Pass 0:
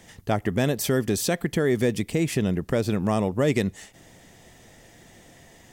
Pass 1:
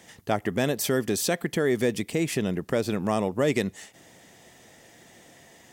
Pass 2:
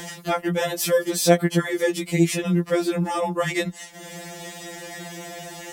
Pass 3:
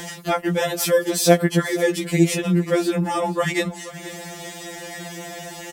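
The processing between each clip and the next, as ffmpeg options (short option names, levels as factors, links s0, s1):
-af "highpass=f=220:p=1"
-af "acompressor=mode=upward:threshold=0.0316:ratio=2.5,afftfilt=real='re*2.83*eq(mod(b,8),0)':imag='im*2.83*eq(mod(b,8),0)':win_size=2048:overlap=0.75,volume=2.11"
-af "aecho=1:1:481|962|1443:0.158|0.046|0.0133,volume=1.26"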